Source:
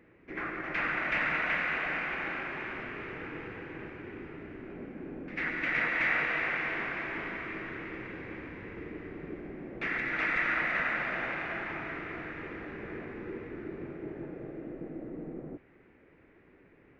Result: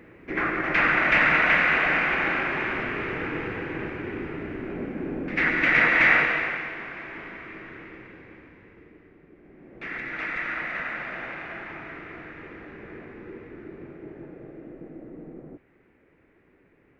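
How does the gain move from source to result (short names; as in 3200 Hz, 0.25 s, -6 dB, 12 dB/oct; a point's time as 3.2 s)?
6.13 s +10.5 dB
6.75 s -2 dB
7.81 s -2 dB
9.31 s -12.5 dB
9.94 s -1 dB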